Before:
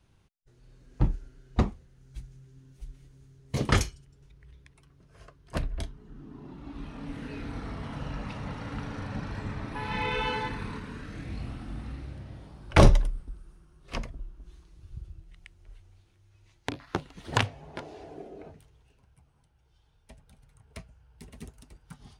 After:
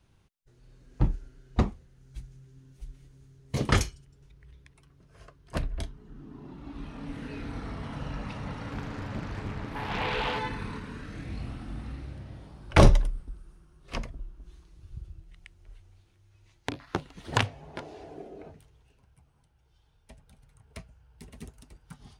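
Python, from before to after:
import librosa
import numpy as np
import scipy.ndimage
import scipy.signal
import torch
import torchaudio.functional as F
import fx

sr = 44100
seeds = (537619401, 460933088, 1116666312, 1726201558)

y = fx.doppler_dist(x, sr, depth_ms=0.69, at=(8.71, 10.39))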